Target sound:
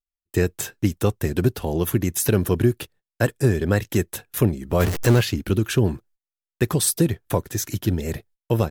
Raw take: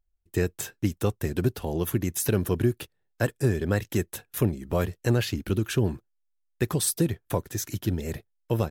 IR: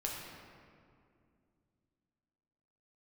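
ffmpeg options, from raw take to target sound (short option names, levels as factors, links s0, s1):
-filter_complex "[0:a]asettb=1/sr,asplit=3[s0][s1][s2];[s0]atrim=end=4.804[s3];[s1]atrim=start=4.8:end=5.21,asetpts=PTS-STARTPTS,afade=t=in:d=0.004:c=qsin,afade=t=out:st=0.406:d=0.004:c=qsin,aeval=exprs='val(0)+0.5*0.0501*sgn(val(0))':c=same[s4];[s2]atrim=start=5.206[s5];[s3][s4]acrossfade=d=0.004:c1=hsin:c2=qsin[s6];[s6][s5]acrossfade=d=0.004:c1=qsin:c2=hsin,agate=range=0.0501:threshold=0.00178:ratio=16:detection=peak,volume=1.78"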